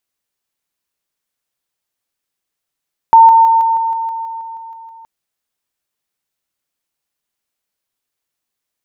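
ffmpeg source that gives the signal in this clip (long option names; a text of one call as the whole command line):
ffmpeg -f lavfi -i "aevalsrc='pow(10,(-1.5-3*floor(t/0.16))/20)*sin(2*PI*907*t)':duration=1.92:sample_rate=44100" out.wav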